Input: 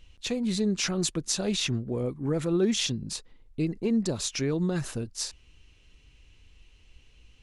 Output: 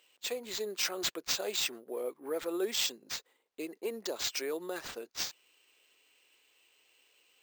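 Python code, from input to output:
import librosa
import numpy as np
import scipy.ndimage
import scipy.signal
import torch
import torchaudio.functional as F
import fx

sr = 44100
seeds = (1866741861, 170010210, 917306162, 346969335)

y = scipy.signal.sosfilt(scipy.signal.butter(4, 410.0, 'highpass', fs=sr, output='sos'), x)
y = np.repeat(y[::4], 4)[:len(y)]
y = y * 10.0 ** (-2.5 / 20.0)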